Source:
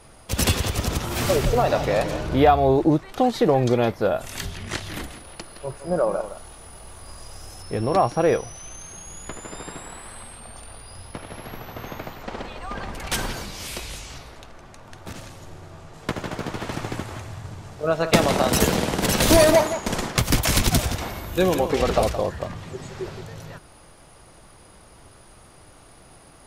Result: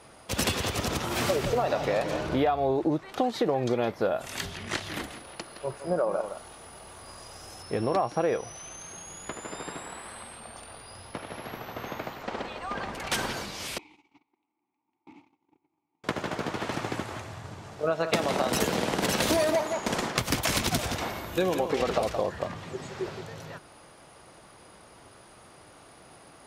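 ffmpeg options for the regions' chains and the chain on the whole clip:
-filter_complex "[0:a]asettb=1/sr,asplit=3[a][b][c];[a]atrim=end=13.784[d];[b]atrim=start=13.78:end=16.04,asetpts=PTS-STARTPTS,afade=t=in:d=0.004:c=qsin,afade=t=out:st=2.256:d=0.004:c=qsin,asplit=3[e][f][g];[e]bandpass=f=300:t=q:w=8,volume=0dB[h];[f]bandpass=f=870:t=q:w=8,volume=-6dB[i];[g]bandpass=f=2.24k:t=q:w=8,volume=-9dB[j];[h][i][j]amix=inputs=3:normalize=0,agate=range=-22dB:threshold=-54dB:ratio=16:release=100:detection=peak[k];[c]atrim=start=16.036[l];[d][k]acrossfade=d=0.004:c1=hsin:c2=qsin[m];[m][l]acrossfade=d=0.004:c1=qsin:c2=hsin,highpass=f=210:p=1,highshelf=f=7.1k:g=-6.5,acompressor=threshold=-23dB:ratio=4"

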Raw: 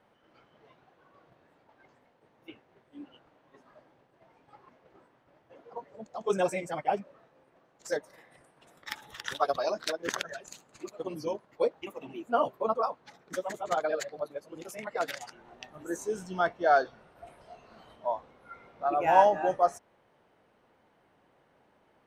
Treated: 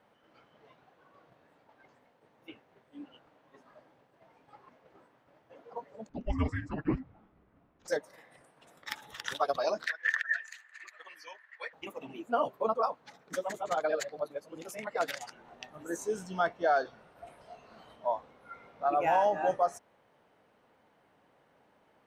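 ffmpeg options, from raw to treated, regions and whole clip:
-filter_complex "[0:a]asettb=1/sr,asplit=3[a][b][c];[a]atrim=end=6.094[d];[b]atrim=start=6.09:end=7.88,asetpts=PTS-STARTPTS,afade=t=in:d=0.004:c=qsin,afade=t=out:st=1.786:d=0.004:c=qsin,lowpass=2.8k,afreqshift=-460[e];[c]atrim=start=7.876[f];[d][e]acrossfade=d=0.004:c1=hsin:c2=qsin[g];[g][f]acrossfade=d=0.004:c1=qsin:c2=hsin,asettb=1/sr,asplit=3[h][i][j];[h]atrim=end=9.864[k];[i]atrim=start=9.86:end=11.73,asetpts=PTS-STARTPTS,afade=t=in:d=0.004:c=qsin,afade=t=out:st=1.866:d=0.004:c=qsin,highpass=f=1.8k:t=q:w=15,highshelf=f=4.1k:g=-10.5[l];[j]atrim=start=11.726[m];[k][l]acrossfade=d=0.004:c1=hsin:c2=qsin[n];[n][m]acrossfade=d=0.004:c1=qsin:c2=hsin,lowshelf=f=79:g=-6.5,bandreject=f=360:w=12,alimiter=limit=-17dB:level=0:latency=1:release=135"

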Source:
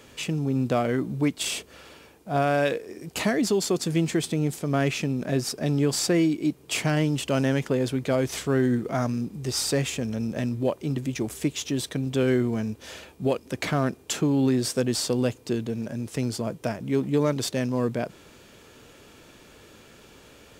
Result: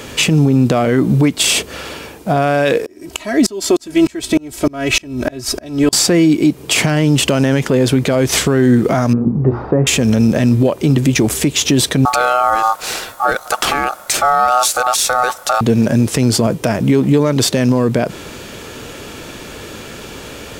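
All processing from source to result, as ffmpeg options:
-filter_complex "[0:a]asettb=1/sr,asplit=3[a][b][c];[a]atrim=end=2.864[d];[b]atrim=start=2.86:end=5.93,asetpts=PTS-STARTPTS,afade=t=in:d=0.004:c=qsin,afade=t=out:st=3.066:d=0.004:c=qsin,asubboost=boost=8:cutoff=81,aecho=1:1:3.1:0.83,atrim=end_sample=135387,aeval=exprs='val(0)*pow(10,-33*if(lt(mod(-3.3*n/s,1),2*abs(-3.3)/1000),1-mod(-3.3*n/s,1)/(2*abs(-3.3)/1000),(mod(-3.3*n/s,1)-2*abs(-3.3)/1000)/(1-2*abs(-3.3)/1000))/20)':c=same[e];[c]atrim=start=5.926[f];[d][e]acrossfade=d=0.004:c1=hsin:c2=qsin[g];[g][f]acrossfade=d=0.004:c1=qsin:c2=hsin,asettb=1/sr,asplit=3[h][i][j];[h]atrim=end=9.134[k];[i]atrim=start=9.13:end=9.87,asetpts=PTS-STARTPTS,afade=t=in:d=0.004:c=qsin,afade=t=out:st=0.736:d=0.004:c=qsin,lowpass=f=1.2k:w=0.5412,lowpass=f=1.2k:w=1.3066,bandreject=f=60:t=h:w=6,bandreject=f=120:t=h:w=6,bandreject=f=180:t=h:w=6,bandreject=f=240:t=h:w=6,bandreject=f=300:t=h:w=6,bandreject=f=360:t=h:w=6,bandreject=f=420:t=h:w=6[l];[j]atrim=start=9.866[m];[k][l]acrossfade=d=0.004:c1=hsin:c2=qsin[n];[n][m]acrossfade=d=0.004:c1=qsin:c2=hsin,asettb=1/sr,asplit=3[o][p][q];[o]atrim=end=12.054[r];[p]atrim=start=12.05:end=15.61,asetpts=PTS-STARTPTS,afade=t=in:d=0.004:c=qsin,afade=t=out:st=3.556:d=0.004:c=qsin,highshelf=f=6.1k:g=10,aeval=exprs='val(0)*sin(2*PI*1000*n/s)':c=same[s];[q]atrim=start=15.606[t];[r][s]acrossfade=d=0.004:c1=hsin:c2=qsin[u];[u][t]acrossfade=d=0.004:c1=qsin:c2=hsin,acompressor=threshold=-25dB:ratio=6,alimiter=level_in=22dB:limit=-1dB:release=50:level=0:latency=1,volume=-2.5dB"

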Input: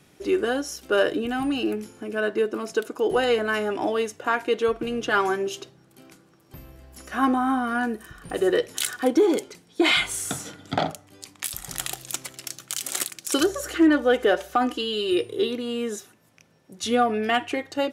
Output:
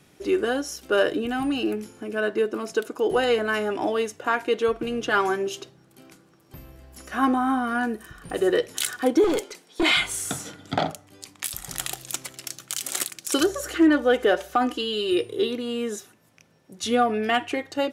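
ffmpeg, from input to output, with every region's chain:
-filter_complex "[0:a]asettb=1/sr,asplit=3[a][b][c];[a]atrim=end=9.244[d];[b]atrim=start=9.24:end=9.83,asetpts=PTS-STARTPTS,afade=t=in:d=0.004:c=qsin,afade=t=out:st=0.586:d=0.004:c=qsin,highpass=360,acontrast=30,aeval=exprs='(tanh(7.94*val(0)+0.35)-tanh(0.35))/7.94':c=same[e];[c]atrim=start=9.826[f];[d][e]acrossfade=d=0.004:c1=hsin:c2=qsin[g];[g][f]acrossfade=d=0.004:c1=qsin:c2=hsin"

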